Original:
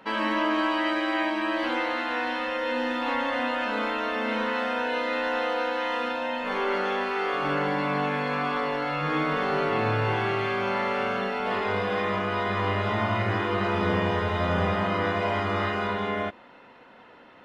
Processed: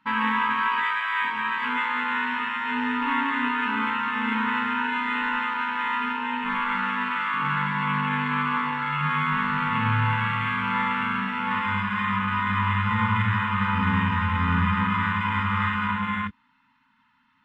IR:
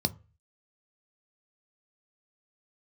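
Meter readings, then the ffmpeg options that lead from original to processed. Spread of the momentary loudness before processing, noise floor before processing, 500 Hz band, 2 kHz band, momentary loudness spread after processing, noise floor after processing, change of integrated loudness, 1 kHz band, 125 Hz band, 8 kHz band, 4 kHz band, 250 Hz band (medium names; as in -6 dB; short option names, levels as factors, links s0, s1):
3 LU, -51 dBFS, -19.0 dB, +4.0 dB, 3 LU, -65 dBFS, +2.0 dB, +3.0 dB, +4.5 dB, no reading, -0.5 dB, +1.5 dB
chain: -af "afftfilt=real='re*(1-between(b*sr/4096,280,850))':imag='im*(1-between(b*sr/4096,280,850))':win_size=4096:overlap=0.75,afwtdn=0.02,volume=1.68"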